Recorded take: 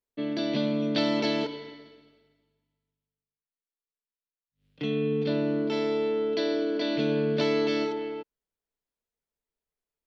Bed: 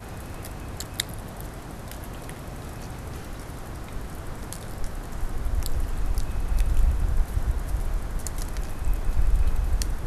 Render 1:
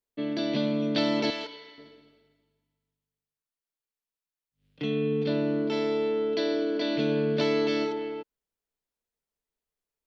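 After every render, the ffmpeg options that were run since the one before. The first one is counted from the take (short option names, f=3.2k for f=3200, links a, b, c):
-filter_complex "[0:a]asettb=1/sr,asplit=3[a][b][c];[a]atrim=end=1.304[d];[b]atrim=start=1.3:end=1.78,asetpts=PTS-STARTPTS,afade=t=in:d=0.004:c=qsin,afade=t=out:st=0.476:d=0.004:c=qsin,highpass=f=1.2k:p=1[e];[c]atrim=start=1.776[f];[d][e]acrossfade=d=0.004:c1=hsin:c2=qsin[g];[g][f]acrossfade=d=0.004:c1=qsin:c2=hsin"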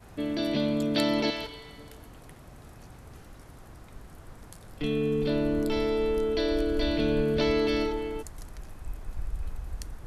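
-filter_complex "[1:a]volume=-12dB[a];[0:a][a]amix=inputs=2:normalize=0"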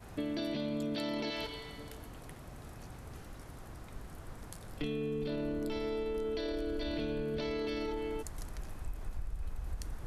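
-af "alimiter=limit=-21dB:level=0:latency=1:release=19,acompressor=threshold=-33dB:ratio=6"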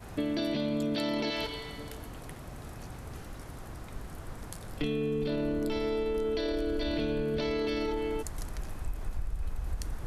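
-af "volume=5dB"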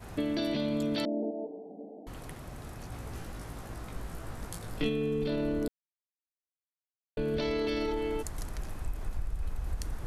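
-filter_complex "[0:a]asettb=1/sr,asplit=3[a][b][c];[a]atrim=end=1.054[d];[b]atrim=start=1.05:end=2.07,asetpts=PTS-STARTPTS,afade=t=in:d=0.004:c=qsin,afade=t=out:st=1.016:d=0.004:c=qsin,asuperpass=centerf=380:order=20:qfactor=0.62[e];[c]atrim=start=2.066[f];[d][e]acrossfade=d=0.004:c1=hsin:c2=qsin[g];[g][f]acrossfade=d=0.004:c1=qsin:c2=hsin,asettb=1/sr,asplit=3[h][i][j];[h]atrim=end=2.904[k];[i]atrim=start=2.9:end=4.89,asetpts=PTS-STARTPTS,afade=t=in:d=0.004:c=qsin,afade=t=out:st=1.986:d=0.004:c=qsin,asplit=2[l][m];[m]adelay=18,volume=-3dB[n];[l][n]amix=inputs=2:normalize=0,atrim=end_sample=87759[o];[j]atrim=start=4.886[p];[k][o]acrossfade=d=0.004:c1=hsin:c2=qsin[q];[q][p]acrossfade=d=0.004:c1=qsin:c2=hsin,asplit=3[r][s][t];[r]atrim=end=5.68,asetpts=PTS-STARTPTS,afade=t=out:st=5.676:d=0.004:c=hsin[u];[s]atrim=start=5.68:end=7.17,asetpts=PTS-STARTPTS,volume=0[v];[t]atrim=start=7.17,asetpts=PTS-STARTPTS,afade=t=in:d=0.004:c=hsin[w];[u][v][w]concat=n=3:v=0:a=1"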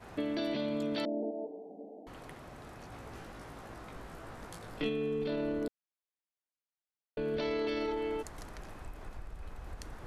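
-af "lowpass=f=3.1k:p=1,lowshelf=f=180:g=-12"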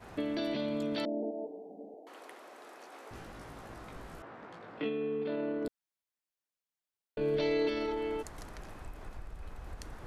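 -filter_complex "[0:a]asettb=1/sr,asplit=3[a][b][c];[a]atrim=end=1.944[d];[b]atrim=start=1.94:end=3.11,asetpts=PTS-STARTPTS,afade=t=in:d=0.004:c=qsin,afade=t=out:st=1.166:d=0.004:c=qsin,highpass=f=330:w=0.5412,highpass=f=330:w=1.3066[e];[c]atrim=start=3.106[f];[d][e]acrossfade=d=0.004:c1=hsin:c2=qsin[g];[g][f]acrossfade=d=0.004:c1=qsin:c2=hsin,asettb=1/sr,asplit=3[h][i][j];[h]atrim=end=4.224[k];[i]atrim=start=4.22:end=5.65,asetpts=PTS-STARTPTS,afade=t=in:d=0.004:c=qsin,afade=t=out:st=1.426:d=0.004:c=qsin,highpass=200,lowpass=2.6k[l];[j]atrim=start=5.646[m];[k][l]acrossfade=d=0.004:c1=hsin:c2=qsin[n];[n][m]acrossfade=d=0.004:c1=qsin:c2=hsin,asettb=1/sr,asplit=3[o][p][q];[o]atrim=end=7.204[r];[p]atrim=start=7.2:end=7.69,asetpts=PTS-STARTPTS,afade=t=in:d=0.004:c=qsin,afade=t=out:st=0.486:d=0.004:c=qsin,aecho=1:1:6.5:0.76,atrim=end_sample=21609[s];[q]atrim=start=7.686[t];[r][s]acrossfade=d=0.004:c1=hsin:c2=qsin[u];[u][t]acrossfade=d=0.004:c1=qsin:c2=hsin"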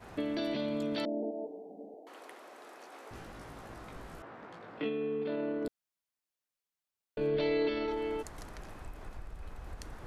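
-filter_complex "[0:a]asettb=1/sr,asplit=3[a][b][c];[a]atrim=end=7.274[d];[b]atrim=start=7.27:end=7.88,asetpts=PTS-STARTPTS,afade=t=in:d=0.004:c=qsin,afade=t=out:st=0.606:d=0.004:c=qsin,lowpass=f=4.6k:w=0.5412,lowpass=f=4.6k:w=1.3066[e];[c]atrim=start=7.876[f];[d][e]acrossfade=d=0.004:c1=hsin:c2=qsin[g];[g][f]acrossfade=d=0.004:c1=qsin:c2=hsin"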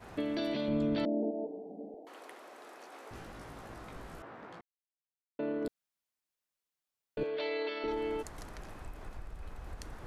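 -filter_complex "[0:a]asettb=1/sr,asplit=3[a][b][c];[a]atrim=end=0.684[d];[b]atrim=start=0.68:end=2.05,asetpts=PTS-STARTPTS,afade=t=in:d=0.004:c=qsin,afade=t=out:st=1.366:d=0.004:c=qsin,aemphasis=mode=reproduction:type=bsi[e];[c]atrim=start=2.046[f];[d][e]acrossfade=d=0.004:c1=hsin:c2=qsin[g];[g][f]acrossfade=d=0.004:c1=qsin:c2=hsin,asettb=1/sr,asplit=3[h][i][j];[h]atrim=end=7.234[k];[i]atrim=start=7.23:end=7.84,asetpts=PTS-STARTPTS,afade=t=in:d=0.004:c=qsin,afade=t=out:st=0.606:d=0.004:c=qsin,highpass=560,lowpass=5.9k[l];[j]atrim=start=7.836[m];[k][l]acrossfade=d=0.004:c1=hsin:c2=qsin[n];[n][m]acrossfade=d=0.004:c1=qsin:c2=hsin,asplit=3[o][p][q];[o]atrim=end=4.61,asetpts=PTS-STARTPTS,afade=t=out:st=4.606:d=0.004:c=hsin[r];[p]atrim=start=4.61:end=5.39,asetpts=PTS-STARTPTS,volume=0[s];[q]atrim=start=5.39,asetpts=PTS-STARTPTS,afade=t=in:d=0.004:c=hsin[t];[r][s][t]concat=n=3:v=0:a=1"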